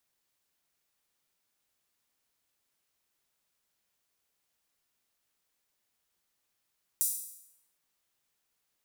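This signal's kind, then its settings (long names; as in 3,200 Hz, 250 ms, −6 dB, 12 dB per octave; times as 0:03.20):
open synth hi-hat length 0.76 s, high-pass 8,500 Hz, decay 0.79 s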